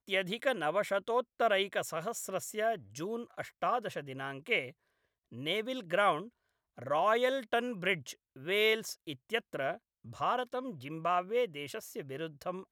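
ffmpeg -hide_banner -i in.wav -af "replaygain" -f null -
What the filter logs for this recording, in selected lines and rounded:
track_gain = +12.5 dB
track_peak = 0.108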